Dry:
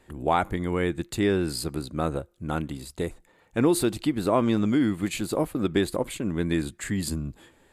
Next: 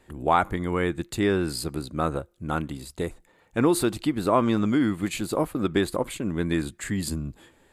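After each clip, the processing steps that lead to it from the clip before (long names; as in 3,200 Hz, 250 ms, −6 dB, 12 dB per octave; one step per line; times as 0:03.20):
dynamic equaliser 1,200 Hz, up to +5 dB, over −40 dBFS, Q 1.6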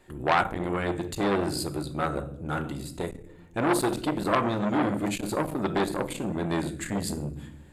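convolution reverb RT60 0.75 s, pre-delay 3 ms, DRR 7 dB
saturating transformer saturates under 1,800 Hz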